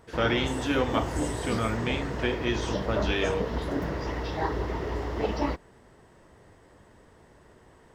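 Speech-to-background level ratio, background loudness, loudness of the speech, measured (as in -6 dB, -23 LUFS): 1.5 dB, -31.5 LUFS, -30.0 LUFS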